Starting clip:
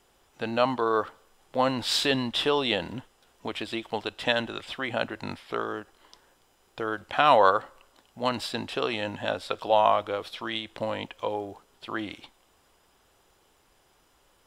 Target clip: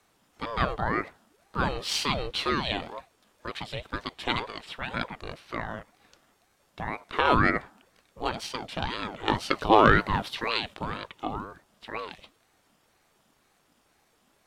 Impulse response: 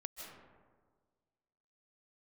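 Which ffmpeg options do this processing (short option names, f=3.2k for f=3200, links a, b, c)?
-filter_complex "[0:a]asettb=1/sr,asplit=3[a][b][c];[a]atrim=end=9.284[d];[b]atrim=start=9.28:end=10.74,asetpts=PTS-STARTPTS,afade=t=in:d=0.004:c=qsin,afade=t=out:st=1.456:d=0.004:c=qsin,acontrast=80[e];[c]atrim=start=10.736[f];[d][e]acrossfade=d=0.004:c1=hsin:c2=qsin[g];[g][f]acrossfade=d=0.004:c1=qsin:c2=hsin,aeval=exprs='val(0)*sin(2*PI*510*n/s+510*0.6/2*sin(2*PI*2*n/s))':c=same"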